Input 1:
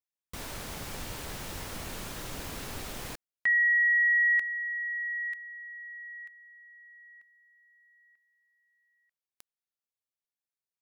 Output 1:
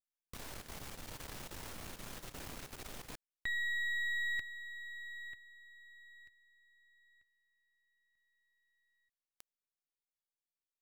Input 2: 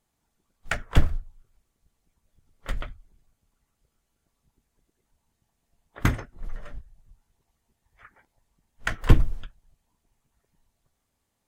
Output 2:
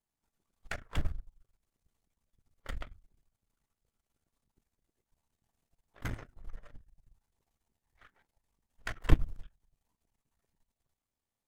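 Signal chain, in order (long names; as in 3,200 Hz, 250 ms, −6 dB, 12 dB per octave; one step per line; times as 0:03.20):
gain on one half-wave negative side −12 dB
output level in coarse steps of 11 dB
level −2.5 dB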